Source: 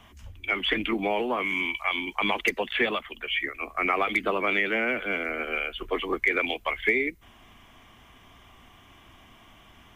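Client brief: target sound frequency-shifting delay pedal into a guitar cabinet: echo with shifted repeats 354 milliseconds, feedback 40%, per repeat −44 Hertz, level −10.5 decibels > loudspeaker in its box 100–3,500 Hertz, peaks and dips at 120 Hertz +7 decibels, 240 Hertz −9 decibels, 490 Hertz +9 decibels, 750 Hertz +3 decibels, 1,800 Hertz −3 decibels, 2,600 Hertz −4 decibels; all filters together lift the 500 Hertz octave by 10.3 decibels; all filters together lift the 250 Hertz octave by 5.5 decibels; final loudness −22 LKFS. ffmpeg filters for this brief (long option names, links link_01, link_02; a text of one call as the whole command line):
ffmpeg -i in.wav -filter_complex "[0:a]equalizer=frequency=250:width_type=o:gain=9,equalizer=frequency=500:width_type=o:gain=3.5,asplit=5[link_01][link_02][link_03][link_04][link_05];[link_02]adelay=354,afreqshift=-44,volume=-10.5dB[link_06];[link_03]adelay=708,afreqshift=-88,volume=-18.5dB[link_07];[link_04]adelay=1062,afreqshift=-132,volume=-26.4dB[link_08];[link_05]adelay=1416,afreqshift=-176,volume=-34.4dB[link_09];[link_01][link_06][link_07][link_08][link_09]amix=inputs=5:normalize=0,highpass=100,equalizer=frequency=120:width_type=q:width=4:gain=7,equalizer=frequency=240:width_type=q:width=4:gain=-9,equalizer=frequency=490:width_type=q:width=4:gain=9,equalizer=frequency=750:width_type=q:width=4:gain=3,equalizer=frequency=1800:width_type=q:width=4:gain=-3,equalizer=frequency=2600:width_type=q:width=4:gain=-4,lowpass=frequency=3500:width=0.5412,lowpass=frequency=3500:width=1.3066,volume=0.5dB" out.wav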